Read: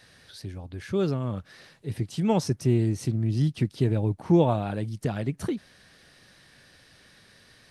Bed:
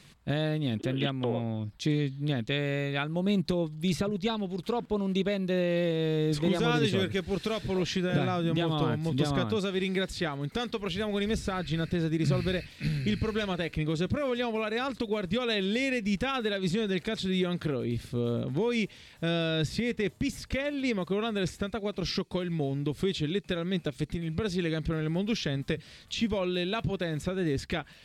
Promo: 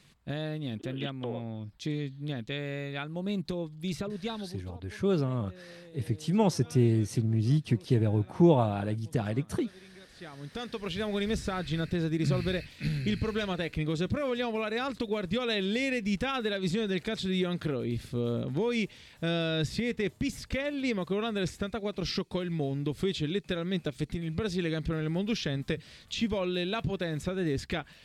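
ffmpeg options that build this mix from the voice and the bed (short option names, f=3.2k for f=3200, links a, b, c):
-filter_complex "[0:a]adelay=4100,volume=-1.5dB[a];[1:a]volume=17dB,afade=t=out:st=4.4:d=0.32:silence=0.125893,afade=t=in:st=10.11:d=0.92:silence=0.0749894[b];[a][b]amix=inputs=2:normalize=0"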